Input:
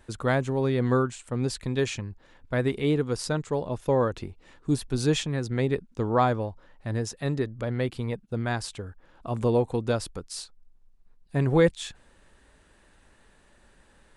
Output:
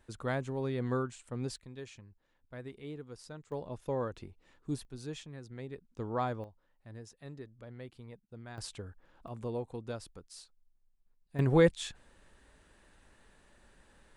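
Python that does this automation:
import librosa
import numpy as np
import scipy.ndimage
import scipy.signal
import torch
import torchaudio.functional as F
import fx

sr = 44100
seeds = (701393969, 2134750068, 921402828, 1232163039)

y = fx.gain(x, sr, db=fx.steps((0.0, -9.5), (1.56, -19.5), (3.52, -11.0), (4.85, -18.0), (5.85, -11.0), (6.44, -19.0), (8.58, -7.0), (9.28, -14.0), (11.39, -3.5)))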